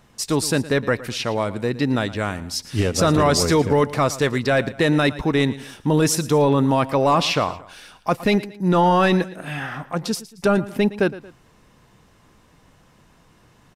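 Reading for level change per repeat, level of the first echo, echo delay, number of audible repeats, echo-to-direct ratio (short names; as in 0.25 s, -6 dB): -7.5 dB, -17.0 dB, 0.114 s, 2, -16.5 dB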